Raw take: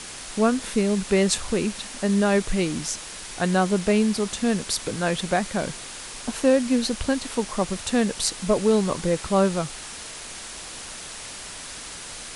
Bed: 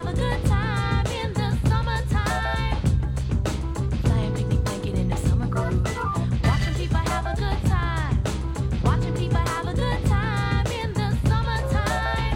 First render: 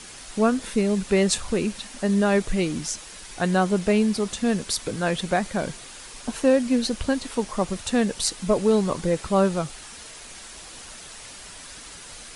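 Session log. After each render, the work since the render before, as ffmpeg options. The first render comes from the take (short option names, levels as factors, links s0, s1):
-af "afftdn=nr=6:nf=-38"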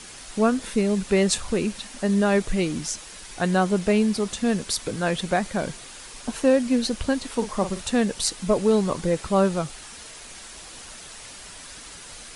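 -filter_complex "[0:a]asettb=1/sr,asplit=3[s0][s1][s2];[s0]atrim=end=7.344[s3];[s1]atrim=start=7.34:end=7.91,asetpts=PTS-STARTPTS,afade=t=in:d=0.004:c=qsin,afade=t=out:st=0.566:d=0.004:c=qsin,asplit=2[s4][s5];[s5]adelay=45,volume=0.316[s6];[s4][s6]amix=inputs=2:normalize=0,atrim=end_sample=25137[s7];[s2]atrim=start=7.906[s8];[s3][s7]acrossfade=d=0.004:c1=hsin:c2=qsin[s9];[s9][s8]acrossfade=d=0.004:c1=qsin:c2=hsin"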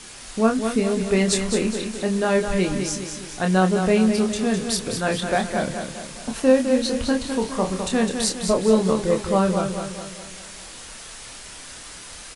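-filter_complex "[0:a]asplit=2[s0][s1];[s1]adelay=27,volume=0.562[s2];[s0][s2]amix=inputs=2:normalize=0,asplit=2[s3][s4];[s4]aecho=0:1:207|414|621|828|1035|1242:0.447|0.219|0.107|0.0526|0.0258|0.0126[s5];[s3][s5]amix=inputs=2:normalize=0"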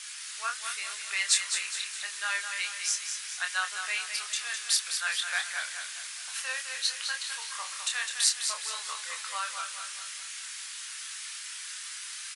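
-af "highpass=f=1400:w=0.5412,highpass=f=1400:w=1.3066"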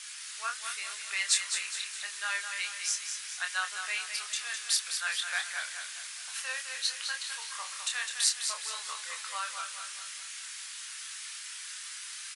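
-af "volume=0.794"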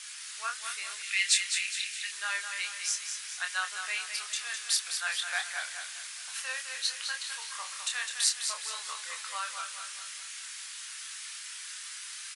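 -filter_complex "[0:a]asettb=1/sr,asplit=3[s0][s1][s2];[s0]atrim=end=1.034[s3];[s1]atrim=start=1.03:end=2.12,asetpts=PTS-STARTPTS,afade=t=in:d=0.004:c=qsin,afade=t=out:st=1.086:d=0.004:c=qsin,highpass=f=2300:t=q:w=1.8[s4];[s2]atrim=start=2.116[s5];[s3][s4]acrossfade=d=0.004:c1=hsin:c2=qsin[s6];[s6][s5]acrossfade=d=0.004:c1=qsin:c2=hsin,asettb=1/sr,asplit=3[s7][s8][s9];[s7]atrim=end=4.854[s10];[s8]atrim=start=4.85:end=5.97,asetpts=PTS-STARTPTS,afade=t=in:d=0.004:c=qsin,afade=t=out:st=1.116:d=0.004:c=qsin,equalizer=f=750:t=o:w=0.28:g=7[s11];[s9]atrim=start=5.966[s12];[s10][s11]acrossfade=d=0.004:c1=hsin:c2=qsin[s13];[s13][s12]acrossfade=d=0.004:c1=qsin:c2=hsin"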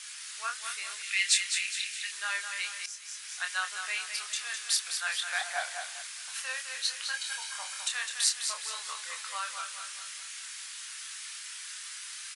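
-filter_complex "[0:a]asettb=1/sr,asplit=3[s0][s1][s2];[s0]atrim=end=5.414[s3];[s1]atrim=start=5.41:end=6.02,asetpts=PTS-STARTPTS,afade=t=in:d=0.004:c=qsin,afade=t=out:st=0.606:d=0.004:c=qsin,equalizer=f=710:t=o:w=0.68:g=12.5[s4];[s2]atrim=start=6.016[s5];[s3][s4]acrossfade=d=0.004:c1=hsin:c2=qsin[s6];[s6][s5]acrossfade=d=0.004:c1=qsin:c2=hsin,asettb=1/sr,asplit=3[s7][s8][s9];[s7]atrim=end=7.134[s10];[s8]atrim=start=7.13:end=7.88,asetpts=PTS-STARTPTS,afade=t=in:d=0.004:c=qsin,afade=t=out:st=0.746:d=0.004:c=qsin,aecho=1:1:1.3:0.64,atrim=end_sample=33075[s11];[s9]atrim=start=7.876[s12];[s10][s11]acrossfade=d=0.004:c1=hsin:c2=qsin[s13];[s13][s12]acrossfade=d=0.004:c1=qsin:c2=hsin,asplit=2[s14][s15];[s14]atrim=end=2.86,asetpts=PTS-STARTPTS,afade=t=out:st=2.856:d=0.004:c=hsin:silence=0.188365[s16];[s15]atrim=start=2.86,asetpts=PTS-STARTPTS,afade=t=in:d=0.55:silence=0.188365[s17];[s16][s17]concat=n=2:v=0:a=1"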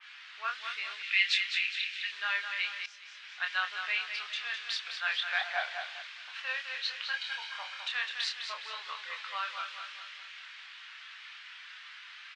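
-af "lowpass=f=3300:w=0.5412,lowpass=f=3300:w=1.3066,adynamicequalizer=threshold=0.00501:dfrequency=2600:dqfactor=0.7:tfrequency=2600:tqfactor=0.7:attack=5:release=100:ratio=0.375:range=3.5:mode=boostabove:tftype=highshelf"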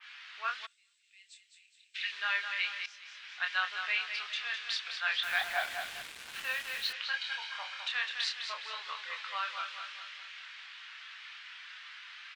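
-filter_complex "[0:a]asplit=3[s0][s1][s2];[s0]afade=t=out:st=0.65:d=0.02[s3];[s1]bandpass=f=7900:t=q:w=14,afade=t=in:st=0.65:d=0.02,afade=t=out:st=1.94:d=0.02[s4];[s2]afade=t=in:st=1.94:d=0.02[s5];[s3][s4][s5]amix=inputs=3:normalize=0,asettb=1/sr,asplit=3[s6][s7][s8];[s6]atrim=end=5.234[s9];[s7]atrim=start=5.23:end=6.93,asetpts=PTS-STARTPTS,afade=t=in:d=0.004:c=qsin,afade=t=out:st=1.696:d=0.004:c=qsin,acrusher=bits=6:mix=0:aa=0.5[s10];[s8]atrim=start=6.926[s11];[s9][s10]acrossfade=d=0.004:c1=hsin:c2=qsin[s12];[s12][s11]acrossfade=d=0.004:c1=qsin:c2=hsin"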